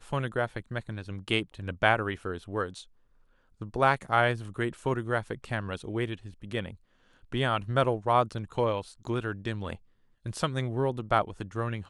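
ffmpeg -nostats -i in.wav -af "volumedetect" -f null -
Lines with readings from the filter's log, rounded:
mean_volume: -30.7 dB
max_volume: -7.1 dB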